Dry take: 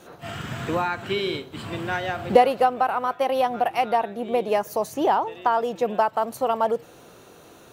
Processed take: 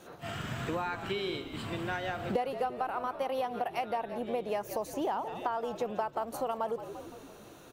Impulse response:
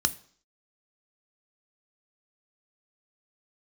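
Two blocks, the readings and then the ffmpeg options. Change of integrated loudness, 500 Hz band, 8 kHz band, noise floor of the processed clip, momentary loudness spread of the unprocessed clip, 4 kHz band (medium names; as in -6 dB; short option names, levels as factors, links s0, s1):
-11.0 dB, -11.0 dB, -7.0 dB, -52 dBFS, 10 LU, -8.5 dB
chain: -filter_complex "[0:a]asplit=2[s0][s1];[s1]asplit=6[s2][s3][s4][s5][s6][s7];[s2]adelay=171,afreqshift=-64,volume=0.178[s8];[s3]adelay=342,afreqshift=-128,volume=0.101[s9];[s4]adelay=513,afreqshift=-192,volume=0.0575[s10];[s5]adelay=684,afreqshift=-256,volume=0.0331[s11];[s6]adelay=855,afreqshift=-320,volume=0.0188[s12];[s7]adelay=1026,afreqshift=-384,volume=0.0107[s13];[s8][s9][s10][s11][s12][s13]amix=inputs=6:normalize=0[s14];[s0][s14]amix=inputs=2:normalize=0,acompressor=threshold=0.0447:ratio=3,volume=0.596"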